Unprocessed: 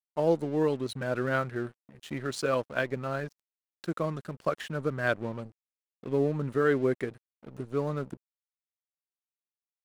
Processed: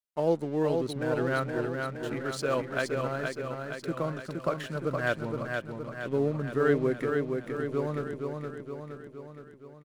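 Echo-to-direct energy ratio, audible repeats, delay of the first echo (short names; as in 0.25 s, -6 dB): -2.5 dB, 6, 0.468 s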